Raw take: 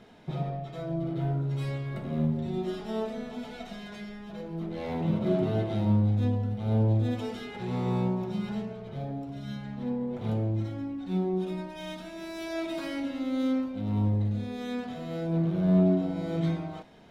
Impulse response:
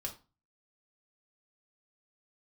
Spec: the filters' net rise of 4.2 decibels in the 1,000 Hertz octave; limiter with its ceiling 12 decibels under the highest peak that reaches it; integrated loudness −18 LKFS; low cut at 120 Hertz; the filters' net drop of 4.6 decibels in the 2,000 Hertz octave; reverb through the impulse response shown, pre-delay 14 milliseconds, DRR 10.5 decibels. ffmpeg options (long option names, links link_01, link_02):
-filter_complex "[0:a]highpass=120,equalizer=frequency=1000:width_type=o:gain=7.5,equalizer=frequency=2000:width_type=o:gain=-8.5,alimiter=level_in=0.5dB:limit=-24dB:level=0:latency=1,volume=-0.5dB,asplit=2[link_01][link_02];[1:a]atrim=start_sample=2205,adelay=14[link_03];[link_02][link_03]afir=irnorm=-1:irlink=0,volume=-10dB[link_04];[link_01][link_04]amix=inputs=2:normalize=0,volume=15.5dB"